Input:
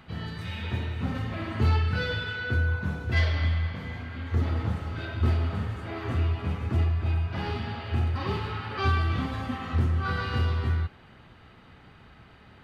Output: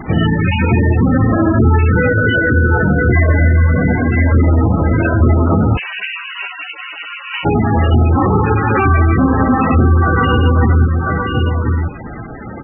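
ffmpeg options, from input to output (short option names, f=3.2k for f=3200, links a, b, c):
-filter_complex "[0:a]asplit=2[a][b];[b]acrusher=samples=19:mix=1:aa=0.000001:lfo=1:lforange=11.4:lforate=2.7,volume=-9.5dB[c];[a][c]amix=inputs=2:normalize=0,acontrast=63,equalizer=f=320:w=1.5:g=6,bandreject=f=400:w=12,acrusher=bits=5:mode=log:mix=0:aa=0.000001,equalizer=f=83:w=1.1:g=-3.5,aecho=1:1:1012:0.316,asettb=1/sr,asplit=3[d][e][f];[d]atrim=end=5.774[g];[e]atrim=start=5.77:end=7.45,asetpts=PTS-STARTPTS,afade=t=in:d=0.004:c=qsin,afade=t=out:st=1.676:d=0.004:c=qsin,lowpass=f=3.3k:t=q:w=0.5098,lowpass=f=3.3k:t=q:w=0.6013,lowpass=f=3.3k:t=q:w=0.9,lowpass=f=3.3k:t=q:w=2.563,afreqshift=-3900[h];[f]atrim=start=7.446[i];[g][h]acrossfade=d=0.004:c1=hsin:c2=qsin[j];[j][i]acrossfade=d=0.004:c1=qsin:c2=hsin,alimiter=level_in=17.5dB:limit=-1dB:release=50:level=0:latency=1,volume=-2.5dB" -ar 24000 -c:a libmp3lame -b:a 8k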